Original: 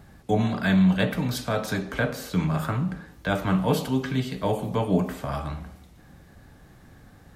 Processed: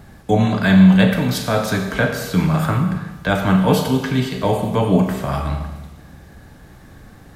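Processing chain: Schroeder reverb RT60 1.2 s, combs from 28 ms, DRR 6 dB; gain +7 dB

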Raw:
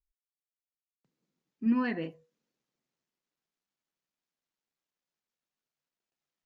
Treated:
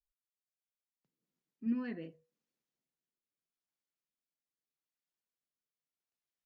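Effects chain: rotary speaker horn 7.5 Hz, later 0.8 Hz, at 0.5; gain -6.5 dB

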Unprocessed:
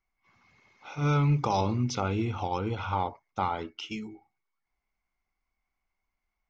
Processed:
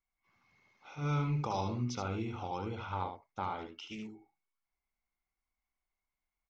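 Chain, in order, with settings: echo 74 ms -6 dB; 2.91–4.09 Doppler distortion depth 0.16 ms; gain -8.5 dB

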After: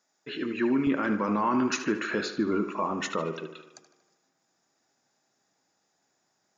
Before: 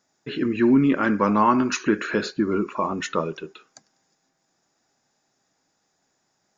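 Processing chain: HPF 450 Hz 6 dB/oct, from 0.87 s 130 Hz; limiter -14 dBFS, peak gain reduction 7.5 dB; tape echo 76 ms, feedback 65%, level -10 dB, low-pass 4800 Hz; gain -3 dB

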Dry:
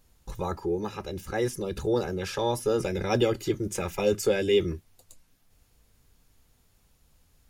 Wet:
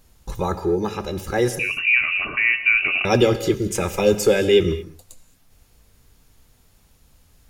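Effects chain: 1.59–3.05 inverted band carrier 2800 Hz; non-linear reverb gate 0.25 s flat, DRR 11.5 dB; gain +7.5 dB

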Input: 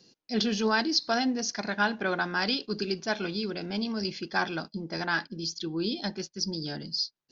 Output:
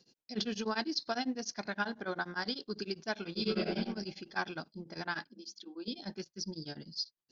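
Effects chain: 1.84–2.78 bell 2600 Hz -13 dB 0.24 oct; 3.31–3.73 reverb throw, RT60 0.87 s, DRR -9.5 dB; 5.29–5.88 rippled Chebyshev high-pass 190 Hz, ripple 6 dB; beating tremolo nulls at 10 Hz; gain -5.5 dB

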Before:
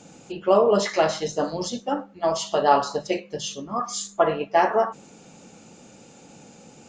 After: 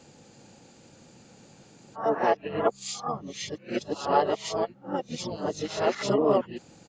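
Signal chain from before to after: whole clip reversed; harmoniser -7 st -3 dB; gain -6.5 dB

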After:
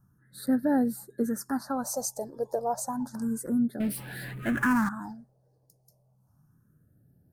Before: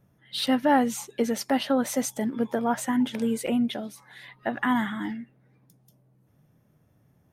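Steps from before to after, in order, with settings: elliptic band-stop 1600–4400 Hz, stop band 50 dB; 3.8–4.89 power-law curve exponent 0.5; phaser stages 4, 0.31 Hz, lowest notch 230–1100 Hz

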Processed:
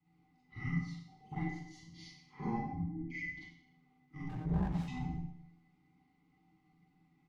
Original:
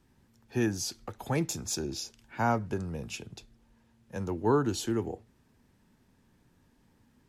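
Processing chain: 2.69–3.3 formant sharpening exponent 2; HPF 240 Hz 24 dB/oct; bell 4300 Hz +10.5 dB 2.5 oct; comb 4.6 ms, depth 59%; in parallel at 0 dB: compressor 6:1, threshold -36 dBFS, peak gain reduction 17 dB; on the sum: octave resonator D#, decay 0.34 s; frequency shift -480 Hz; 0.7–1.94 level quantiser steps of 23 dB; Schroeder reverb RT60 0.71 s, combs from 32 ms, DRR -8.5 dB; 4.29–4.88 running maximum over 17 samples; gain +3.5 dB

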